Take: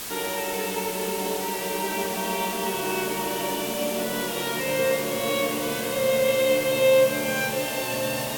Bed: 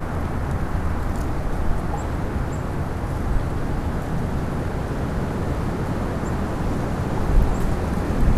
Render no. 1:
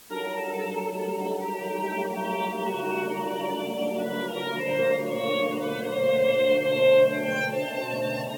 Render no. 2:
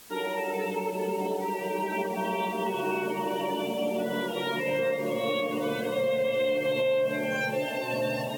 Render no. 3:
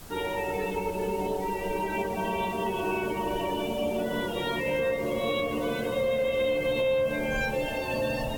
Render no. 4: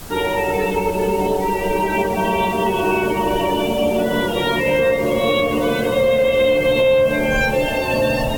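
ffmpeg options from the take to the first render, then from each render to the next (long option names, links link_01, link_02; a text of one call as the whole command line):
ffmpeg -i in.wav -af "afftdn=noise_reduction=16:noise_floor=-29" out.wav
ffmpeg -i in.wav -af "alimiter=limit=-19.5dB:level=0:latency=1:release=111" out.wav
ffmpeg -i in.wav -i bed.wav -filter_complex "[1:a]volume=-20.5dB[link_01];[0:a][link_01]amix=inputs=2:normalize=0" out.wav
ffmpeg -i in.wav -af "volume=11dB" out.wav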